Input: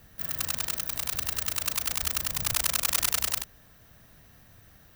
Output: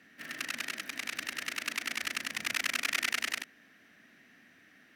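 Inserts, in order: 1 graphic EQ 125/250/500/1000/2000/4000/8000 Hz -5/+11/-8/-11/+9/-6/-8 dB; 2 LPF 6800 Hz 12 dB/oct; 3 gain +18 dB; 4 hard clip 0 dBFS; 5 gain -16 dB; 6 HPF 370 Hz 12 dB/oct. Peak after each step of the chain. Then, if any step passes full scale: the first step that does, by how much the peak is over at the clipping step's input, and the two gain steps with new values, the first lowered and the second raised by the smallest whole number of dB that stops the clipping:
-7.5, -14.0, +4.0, 0.0, -16.0, -15.0 dBFS; step 3, 4.0 dB; step 3 +14 dB, step 5 -12 dB

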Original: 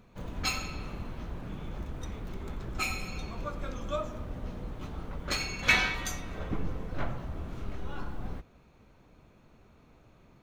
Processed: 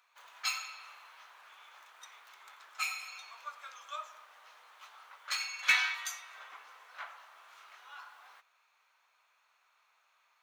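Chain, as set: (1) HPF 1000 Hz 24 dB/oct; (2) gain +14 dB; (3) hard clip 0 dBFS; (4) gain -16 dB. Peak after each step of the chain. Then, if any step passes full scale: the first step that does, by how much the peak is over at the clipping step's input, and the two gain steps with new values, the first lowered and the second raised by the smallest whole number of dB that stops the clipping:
-10.0, +4.0, 0.0, -16.0 dBFS; step 2, 4.0 dB; step 2 +10 dB, step 4 -12 dB

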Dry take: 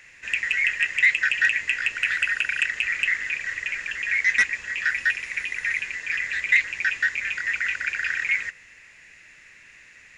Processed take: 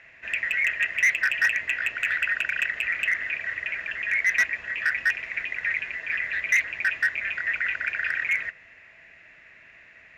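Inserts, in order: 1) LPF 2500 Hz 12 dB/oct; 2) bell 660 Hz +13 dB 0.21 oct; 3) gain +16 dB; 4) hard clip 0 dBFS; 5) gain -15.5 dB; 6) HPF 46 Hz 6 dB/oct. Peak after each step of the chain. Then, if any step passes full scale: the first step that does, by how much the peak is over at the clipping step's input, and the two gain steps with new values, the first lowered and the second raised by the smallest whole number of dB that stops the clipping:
-9.5, -9.5, +6.5, 0.0, -15.5, -15.0 dBFS; step 3, 6.5 dB; step 3 +9 dB, step 5 -8.5 dB

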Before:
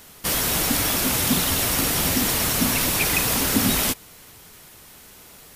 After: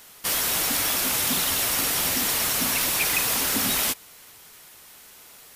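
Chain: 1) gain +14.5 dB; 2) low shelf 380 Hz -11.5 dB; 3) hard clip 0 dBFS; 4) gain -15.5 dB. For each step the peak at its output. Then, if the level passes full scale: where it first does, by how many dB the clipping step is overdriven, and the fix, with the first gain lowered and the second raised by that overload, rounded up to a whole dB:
+8.0, +5.5, 0.0, -15.5 dBFS; step 1, 5.5 dB; step 1 +8.5 dB, step 4 -9.5 dB

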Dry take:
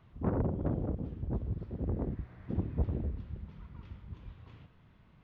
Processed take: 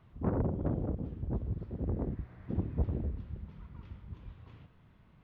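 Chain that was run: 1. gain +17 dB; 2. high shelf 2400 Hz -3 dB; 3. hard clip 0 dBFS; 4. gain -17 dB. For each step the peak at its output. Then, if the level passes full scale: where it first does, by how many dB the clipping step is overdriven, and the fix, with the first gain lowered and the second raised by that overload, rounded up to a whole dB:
-2.0, -2.0, -2.0, -19.0 dBFS; no overload

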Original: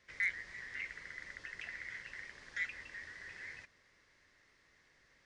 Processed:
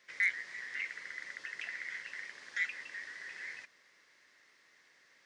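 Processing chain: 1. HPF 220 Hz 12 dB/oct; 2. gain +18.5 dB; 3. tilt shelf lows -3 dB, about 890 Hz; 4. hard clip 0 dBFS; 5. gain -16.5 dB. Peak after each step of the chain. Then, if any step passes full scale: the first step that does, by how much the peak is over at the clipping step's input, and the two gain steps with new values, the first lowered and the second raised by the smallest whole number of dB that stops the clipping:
-23.5, -5.0, -3.0, -3.0, -19.5 dBFS; no overload

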